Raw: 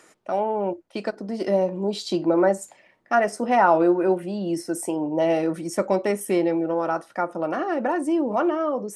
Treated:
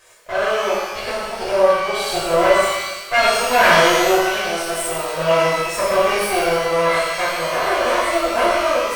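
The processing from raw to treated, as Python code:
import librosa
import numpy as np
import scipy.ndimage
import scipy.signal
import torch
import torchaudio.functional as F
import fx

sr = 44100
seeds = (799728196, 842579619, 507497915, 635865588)

y = fx.lower_of_two(x, sr, delay_ms=1.8)
y = fx.low_shelf(y, sr, hz=360.0, db=-10.5)
y = fx.echo_stepped(y, sr, ms=720, hz=3200.0, octaves=0.7, feedback_pct=70, wet_db=-6)
y = fx.rev_shimmer(y, sr, seeds[0], rt60_s=1.1, semitones=12, shimmer_db=-8, drr_db=-9.5)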